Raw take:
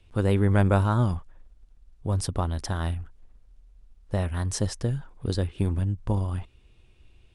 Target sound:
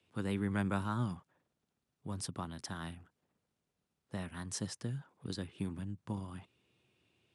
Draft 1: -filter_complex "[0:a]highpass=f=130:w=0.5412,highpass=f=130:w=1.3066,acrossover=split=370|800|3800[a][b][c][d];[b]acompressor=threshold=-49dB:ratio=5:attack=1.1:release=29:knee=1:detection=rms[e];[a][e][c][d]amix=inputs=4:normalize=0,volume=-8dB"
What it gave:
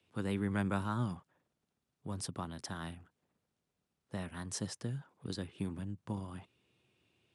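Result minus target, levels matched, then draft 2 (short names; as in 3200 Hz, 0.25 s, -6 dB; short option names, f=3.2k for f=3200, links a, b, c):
compressor: peak gain reduction -9 dB
-filter_complex "[0:a]highpass=f=130:w=0.5412,highpass=f=130:w=1.3066,acrossover=split=370|800|3800[a][b][c][d];[b]acompressor=threshold=-60dB:ratio=5:attack=1.1:release=29:knee=1:detection=rms[e];[a][e][c][d]amix=inputs=4:normalize=0,volume=-8dB"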